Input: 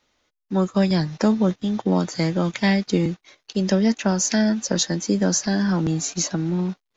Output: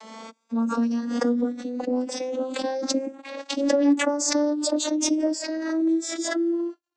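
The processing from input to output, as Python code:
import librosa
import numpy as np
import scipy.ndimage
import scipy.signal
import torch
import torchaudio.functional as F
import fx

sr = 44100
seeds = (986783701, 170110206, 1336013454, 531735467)

y = fx.vocoder_glide(x, sr, note=57, semitones=8)
y = scipy.signal.sosfilt(scipy.signal.butter(2, 410.0, 'highpass', fs=sr, output='sos'), y)
y = fx.peak_eq(y, sr, hz=2600.0, db=-9.5, octaves=2.7)
y = y + 0.71 * np.pad(y, (int(3.6 * sr / 1000.0), 0))[:len(y)]
y = fx.pre_swell(y, sr, db_per_s=41.0)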